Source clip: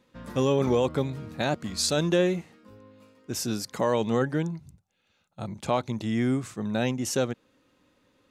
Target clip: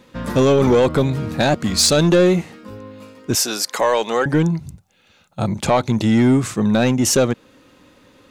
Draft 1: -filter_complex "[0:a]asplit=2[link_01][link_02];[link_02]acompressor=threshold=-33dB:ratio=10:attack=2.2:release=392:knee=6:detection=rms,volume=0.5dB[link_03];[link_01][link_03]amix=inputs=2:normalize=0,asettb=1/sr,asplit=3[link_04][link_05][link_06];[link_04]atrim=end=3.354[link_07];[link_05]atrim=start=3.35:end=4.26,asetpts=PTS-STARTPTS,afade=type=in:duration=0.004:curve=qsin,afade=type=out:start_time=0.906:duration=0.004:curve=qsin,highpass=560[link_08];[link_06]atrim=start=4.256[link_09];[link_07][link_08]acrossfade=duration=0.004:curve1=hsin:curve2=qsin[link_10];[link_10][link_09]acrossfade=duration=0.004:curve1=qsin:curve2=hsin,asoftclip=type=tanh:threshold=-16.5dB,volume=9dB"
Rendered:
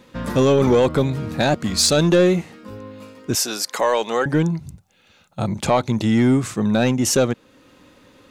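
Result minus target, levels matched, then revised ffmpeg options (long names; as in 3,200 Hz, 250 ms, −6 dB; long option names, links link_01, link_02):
downward compressor: peak gain reduction +10 dB
-filter_complex "[0:a]asplit=2[link_01][link_02];[link_02]acompressor=threshold=-22dB:ratio=10:attack=2.2:release=392:knee=6:detection=rms,volume=0.5dB[link_03];[link_01][link_03]amix=inputs=2:normalize=0,asettb=1/sr,asplit=3[link_04][link_05][link_06];[link_04]atrim=end=3.354[link_07];[link_05]atrim=start=3.35:end=4.26,asetpts=PTS-STARTPTS,afade=type=in:duration=0.004:curve=qsin,afade=type=out:start_time=0.906:duration=0.004:curve=qsin,highpass=560[link_08];[link_06]atrim=start=4.256[link_09];[link_07][link_08]acrossfade=duration=0.004:curve1=hsin:curve2=qsin[link_10];[link_10][link_09]acrossfade=duration=0.004:curve1=qsin:curve2=hsin,asoftclip=type=tanh:threshold=-16.5dB,volume=9dB"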